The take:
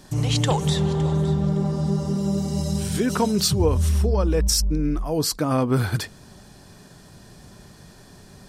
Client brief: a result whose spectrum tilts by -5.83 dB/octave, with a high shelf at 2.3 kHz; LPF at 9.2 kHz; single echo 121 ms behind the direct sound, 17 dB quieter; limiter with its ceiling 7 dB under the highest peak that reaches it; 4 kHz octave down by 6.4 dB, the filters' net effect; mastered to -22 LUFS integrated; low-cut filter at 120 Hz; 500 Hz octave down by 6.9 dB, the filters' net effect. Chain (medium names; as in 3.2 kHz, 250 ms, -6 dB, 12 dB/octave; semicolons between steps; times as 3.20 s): high-pass 120 Hz; low-pass 9.2 kHz; peaking EQ 500 Hz -8.5 dB; treble shelf 2.3 kHz -3 dB; peaking EQ 4 kHz -5 dB; peak limiter -19 dBFS; delay 121 ms -17 dB; trim +5.5 dB